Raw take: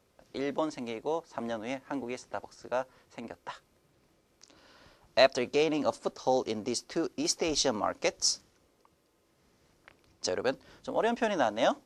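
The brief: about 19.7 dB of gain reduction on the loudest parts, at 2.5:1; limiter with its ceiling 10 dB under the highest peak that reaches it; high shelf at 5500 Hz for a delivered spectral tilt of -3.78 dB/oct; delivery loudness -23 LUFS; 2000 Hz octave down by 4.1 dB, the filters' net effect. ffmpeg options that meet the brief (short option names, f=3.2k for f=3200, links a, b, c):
-af "equalizer=f=2k:t=o:g=-4.5,highshelf=f=5.5k:g=-5.5,acompressor=threshold=-49dB:ratio=2.5,volume=27.5dB,alimiter=limit=-11dB:level=0:latency=1"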